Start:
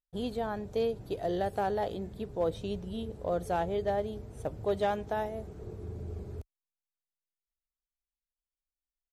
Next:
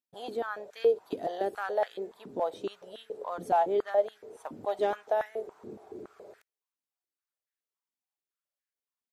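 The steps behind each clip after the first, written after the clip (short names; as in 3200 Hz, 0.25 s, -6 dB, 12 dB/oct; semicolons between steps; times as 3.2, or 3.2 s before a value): stepped high-pass 7.1 Hz 250–1700 Hz; gain -2.5 dB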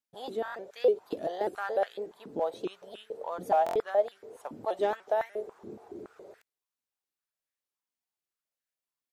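stuck buffer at 0.43/3.64, samples 1024, times 4; shaped vibrato saw up 3.4 Hz, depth 160 cents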